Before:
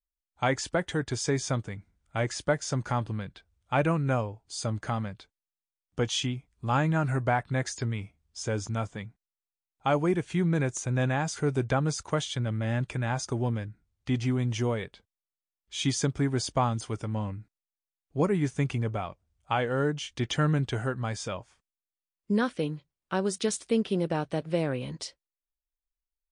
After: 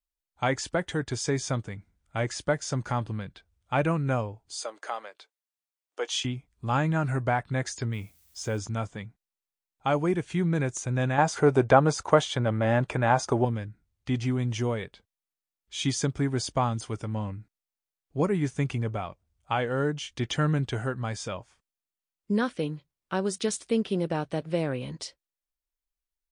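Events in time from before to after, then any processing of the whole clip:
4.57–6.25 s: inverse Chebyshev high-pass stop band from 160 Hz, stop band 50 dB
7.92–8.57 s: added noise blue -63 dBFS
11.18–13.45 s: peaking EQ 740 Hz +11.5 dB 2.6 oct

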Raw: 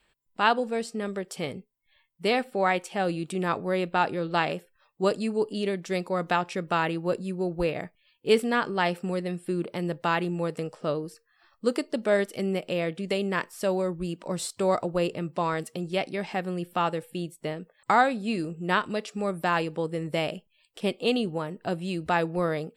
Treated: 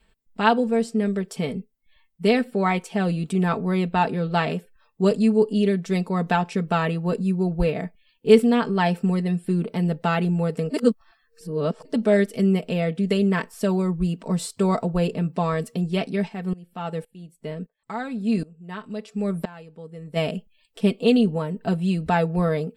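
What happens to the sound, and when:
10.70–11.85 s: reverse
16.27–20.15 s: sawtooth tremolo in dB swelling 2.3 Hz -> 0.66 Hz, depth 22 dB
whole clip: bass shelf 310 Hz +11.5 dB; comb 4.5 ms, depth 68%; trim -1 dB

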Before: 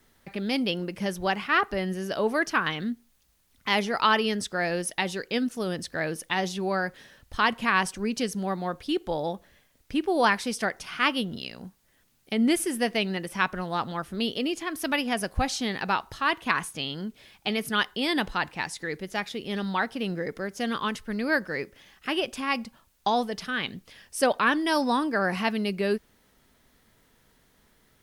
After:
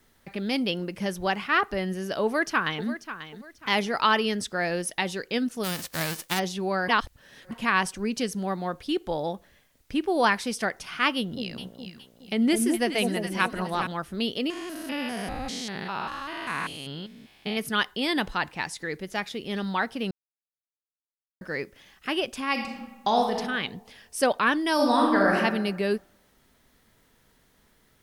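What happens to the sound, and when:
2.24–2.87 s: echo throw 540 ms, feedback 30%, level -12 dB
5.63–6.38 s: formants flattened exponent 0.3
6.88–7.51 s: reverse
11.16–13.87 s: echo whose repeats swap between lows and highs 208 ms, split 880 Hz, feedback 59%, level -4 dB
14.50–17.57 s: spectrogram pixelated in time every 200 ms
20.11–21.41 s: mute
22.51–23.36 s: reverb throw, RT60 1.1 s, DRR 1.5 dB
24.74–25.35 s: reverb throw, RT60 1.1 s, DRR -2.5 dB

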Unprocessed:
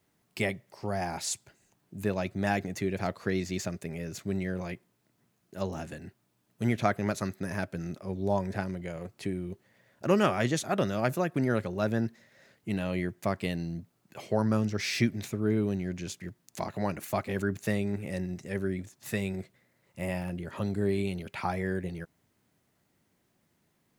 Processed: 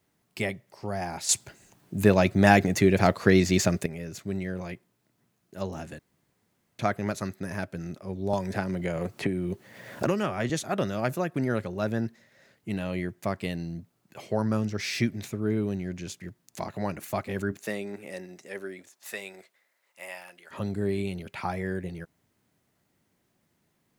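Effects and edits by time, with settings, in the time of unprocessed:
1.29–3.86 s: gain +10.5 dB
5.99–6.79 s: room tone
8.33–10.50 s: three bands compressed up and down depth 100%
17.51–20.50 s: high-pass 250 Hz -> 1.1 kHz

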